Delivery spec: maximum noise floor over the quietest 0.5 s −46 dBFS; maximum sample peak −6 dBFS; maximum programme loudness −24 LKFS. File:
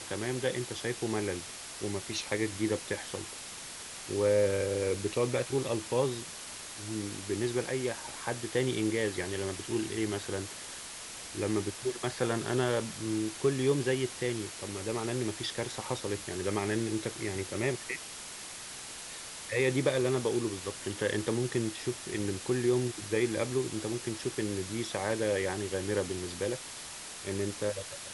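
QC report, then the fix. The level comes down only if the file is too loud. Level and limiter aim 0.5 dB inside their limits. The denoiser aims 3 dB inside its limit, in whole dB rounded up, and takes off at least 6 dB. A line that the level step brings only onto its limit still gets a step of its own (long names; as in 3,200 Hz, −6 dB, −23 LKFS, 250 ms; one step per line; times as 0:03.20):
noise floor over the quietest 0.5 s −44 dBFS: out of spec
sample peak −15.5 dBFS: in spec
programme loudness −33.0 LKFS: in spec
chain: broadband denoise 6 dB, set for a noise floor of −44 dBFS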